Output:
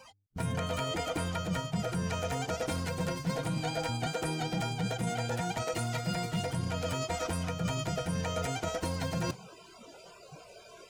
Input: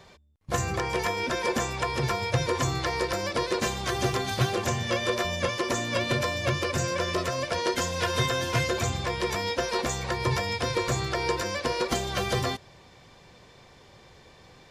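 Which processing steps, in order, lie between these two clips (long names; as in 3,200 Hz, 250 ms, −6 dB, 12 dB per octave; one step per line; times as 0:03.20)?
noise reduction from a noise print of the clip's start 23 dB
low-shelf EQ 270 Hz +11 dB
reversed playback
downward compressor 6 to 1, threshold −34 dBFS, peak gain reduction 21 dB
reversed playback
wrong playback speed 33 rpm record played at 45 rpm
level +3 dB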